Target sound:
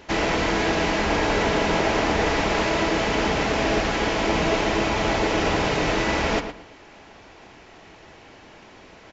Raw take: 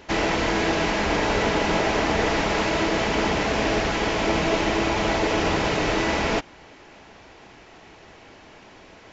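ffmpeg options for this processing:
-filter_complex "[0:a]asplit=2[a][b];[b]adelay=113,lowpass=f=3.6k:p=1,volume=-9dB,asplit=2[c][d];[d]adelay=113,lowpass=f=3.6k:p=1,volume=0.24,asplit=2[e][f];[f]adelay=113,lowpass=f=3.6k:p=1,volume=0.24[g];[a][c][e][g]amix=inputs=4:normalize=0"

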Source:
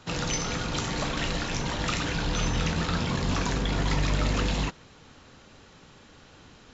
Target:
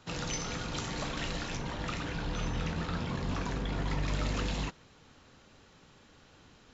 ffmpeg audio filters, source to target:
-filter_complex "[0:a]asettb=1/sr,asplit=3[a][b][c];[a]atrim=end=1.564[d];[b]atrim=start=1.56:end=4.08,asetpts=PTS-STARTPTS,afade=t=in:d=0.004:c=qsin,afade=t=out:st=2.516:d=0.004:c=qsin,highshelf=f=3.9k:g=-9[e];[c]atrim=start=4.076[f];[d][e]acrossfade=d=0.004:c1=hsin:c2=qsin[g];[g][f]acrossfade=d=0.004:c1=qsin:c2=hsin,volume=-6.5dB"

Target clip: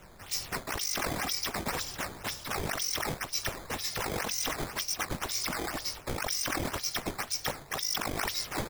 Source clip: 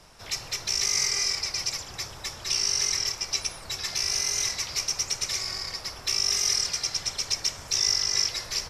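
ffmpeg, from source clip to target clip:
-filter_complex "[0:a]equalizer=f=1.4k:t=o:w=2.4:g=-6.5,asplit=2[a][b];[b]adelay=21,volume=-5dB[c];[a][c]amix=inputs=2:normalize=0,acrossover=split=870[d][e];[d]alimiter=level_in=19dB:limit=-24dB:level=0:latency=1,volume=-19dB[f];[e]acrusher=samples=9:mix=1:aa=0.000001:lfo=1:lforange=14.4:lforate=2[g];[f][g]amix=inputs=2:normalize=0,highshelf=f=4.6k:g=4.5,areverse,acompressor=threshold=-32dB:ratio=4,areverse,volume=1.5dB"

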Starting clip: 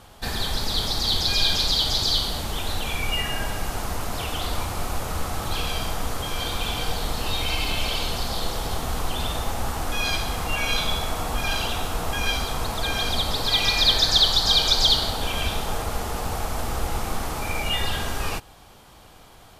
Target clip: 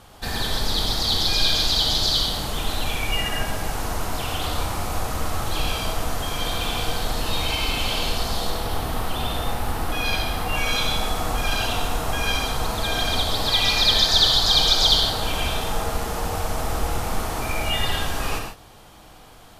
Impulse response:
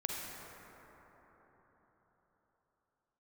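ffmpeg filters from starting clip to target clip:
-filter_complex "[0:a]asettb=1/sr,asplit=3[a][b][c];[a]atrim=end=8.504[d];[b]atrim=start=8.5:end=10.55,asetpts=PTS-STARTPTS,afade=t=in:d=0.004:c=qsin,afade=t=out:st=2.046:d=0.004:c=qsin,equalizer=f=6.8k:t=o:w=0.79:g=-6.5[e];[c]atrim=start=10.546[f];[d][e]acrossfade=d=0.004:c1=hsin:c2=qsin[g];[g][f]acrossfade=d=0.004:c1=qsin:c2=hsin[h];[1:a]atrim=start_sample=2205,afade=t=out:st=0.17:d=0.01,atrim=end_sample=7938,asetrate=33516,aresample=44100[i];[h][i]afir=irnorm=-1:irlink=0"

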